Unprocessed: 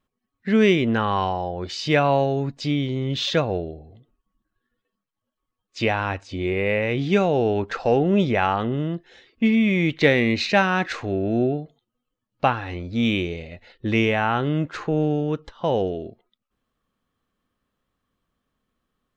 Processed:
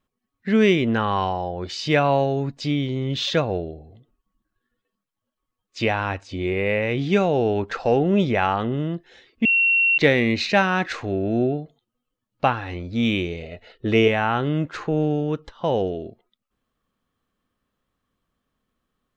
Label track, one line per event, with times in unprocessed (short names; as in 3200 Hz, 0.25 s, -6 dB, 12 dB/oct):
9.450000	9.980000	bleep 2730 Hz -15 dBFS
13.420000	14.080000	small resonant body resonances 440/650/1300/2900 Hz, height 10 dB